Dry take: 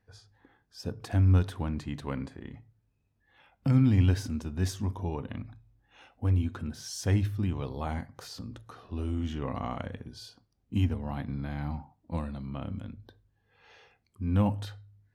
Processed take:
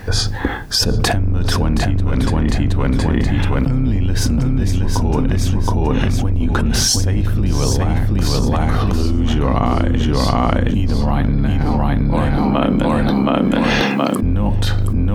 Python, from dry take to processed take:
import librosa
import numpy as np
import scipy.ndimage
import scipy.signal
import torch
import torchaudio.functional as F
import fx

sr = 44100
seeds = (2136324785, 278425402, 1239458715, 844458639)

y = fx.octave_divider(x, sr, octaves=2, level_db=0.0)
y = fx.highpass(y, sr, hz=210.0, slope=24, at=(11.65, 14.23))
y = fx.echo_feedback(y, sr, ms=721, feedback_pct=24, wet_db=-4)
y = fx.env_flatten(y, sr, amount_pct=100)